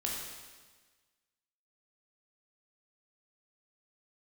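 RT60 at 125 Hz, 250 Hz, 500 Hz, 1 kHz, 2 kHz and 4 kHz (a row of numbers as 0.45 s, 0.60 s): 1.4 s, 1.5 s, 1.4 s, 1.4 s, 1.4 s, 1.4 s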